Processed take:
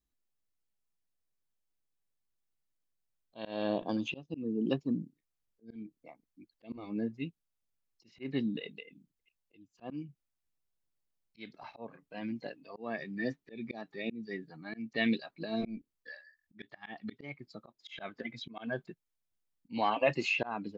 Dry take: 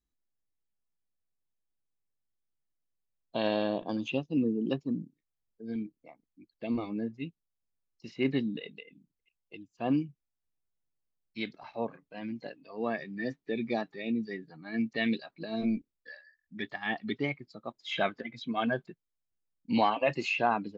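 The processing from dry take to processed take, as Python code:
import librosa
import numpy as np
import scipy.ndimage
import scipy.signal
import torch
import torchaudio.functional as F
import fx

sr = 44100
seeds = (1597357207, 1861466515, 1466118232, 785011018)

y = fx.auto_swell(x, sr, attack_ms=265.0)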